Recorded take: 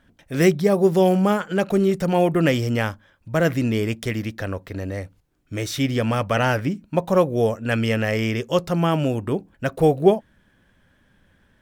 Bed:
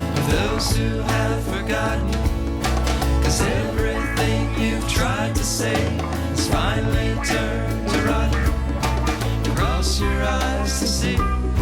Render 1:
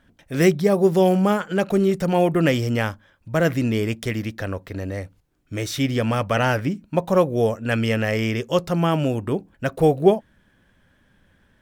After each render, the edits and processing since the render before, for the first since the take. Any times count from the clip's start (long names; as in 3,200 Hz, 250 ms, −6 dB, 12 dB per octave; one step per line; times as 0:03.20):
no processing that can be heard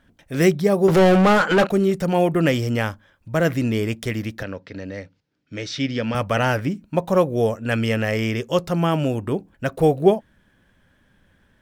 0:00.88–0:01.67: mid-hump overdrive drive 27 dB, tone 2,400 Hz, clips at −8 dBFS
0:04.43–0:06.15: loudspeaker in its box 150–5,600 Hz, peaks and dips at 360 Hz −6 dB, 720 Hz −7 dB, 1,100 Hz −7 dB, 5,000 Hz +3 dB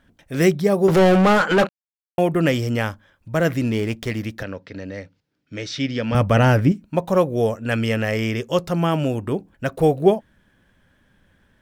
0:01.69–0:02.18: silence
0:03.62–0:04.19: windowed peak hold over 3 samples
0:06.12–0:06.72: low-shelf EQ 430 Hz +9.5 dB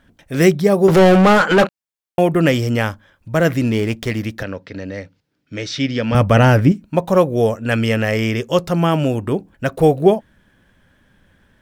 level +4 dB
brickwall limiter −1 dBFS, peak gain reduction 2 dB